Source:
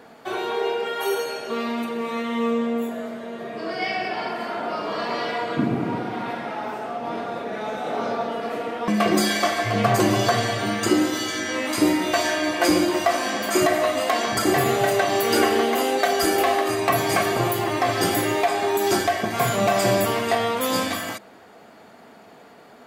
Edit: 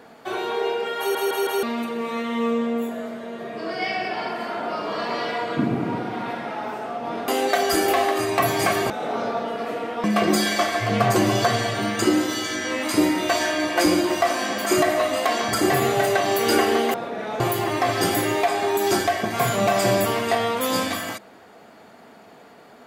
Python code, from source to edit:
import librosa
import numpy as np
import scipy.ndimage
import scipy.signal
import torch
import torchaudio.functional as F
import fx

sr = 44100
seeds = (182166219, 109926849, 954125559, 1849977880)

y = fx.edit(x, sr, fx.stutter_over(start_s=0.99, slice_s=0.16, count=4),
    fx.swap(start_s=7.28, length_s=0.46, other_s=15.78, other_length_s=1.62), tone=tone)